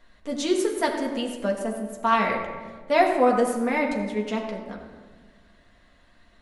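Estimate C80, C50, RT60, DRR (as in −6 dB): 6.5 dB, 5.5 dB, 1.5 s, −1.5 dB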